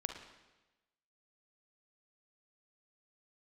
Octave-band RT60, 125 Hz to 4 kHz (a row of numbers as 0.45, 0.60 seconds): 1.1, 1.1, 1.1, 1.1, 1.1, 1.0 seconds